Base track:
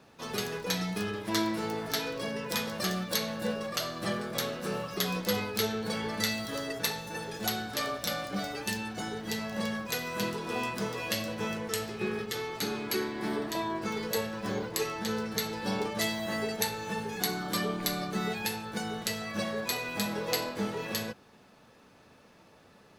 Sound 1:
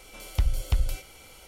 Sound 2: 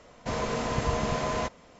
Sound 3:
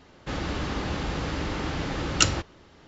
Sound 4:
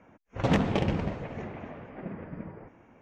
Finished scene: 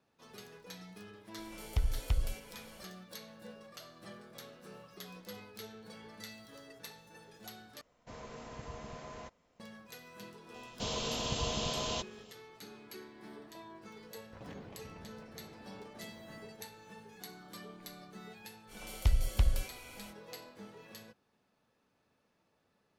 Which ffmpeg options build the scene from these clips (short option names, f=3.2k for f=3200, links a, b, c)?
-filter_complex "[1:a]asplit=2[a][b];[2:a]asplit=2[c][d];[0:a]volume=-18dB[e];[d]highshelf=f=2.5k:t=q:w=3:g=8[f];[4:a]alimiter=level_in=1dB:limit=-24dB:level=0:latency=1:release=428,volume=-1dB[g];[e]asplit=2[h][i];[h]atrim=end=7.814[j];[c]atrim=end=1.79,asetpts=PTS-STARTPTS,volume=-18dB[k];[i]atrim=start=9.596[l];[a]atrim=end=1.47,asetpts=PTS-STARTPTS,volume=-7dB,afade=t=in:d=0.004:c=hsin,afade=t=out:st=1.466:d=0.004:c=hsin,adelay=1380[m];[f]atrim=end=1.79,asetpts=PTS-STARTPTS,volume=-8dB,afade=t=in:d=0.004:c=hsin,afade=t=out:st=1.786:d=0.004:c=hsin,adelay=10540[n];[g]atrim=end=3.01,asetpts=PTS-STARTPTS,volume=-15.5dB,afade=t=in:d=0.004:c=hsin,afade=t=out:st=3.006:d=0.004:c=hsin,adelay=13970[o];[b]atrim=end=1.47,asetpts=PTS-STARTPTS,volume=-3.5dB,afade=t=in:d=0.05,afade=t=out:st=1.42:d=0.05,adelay=18670[p];[j][k]acrossfade=d=0.004:c1=hsin:c2=hsin[q];[q][l]acrossfade=d=0.004:c1=hsin:c2=hsin[r];[r][m][n][o][p]amix=inputs=5:normalize=0"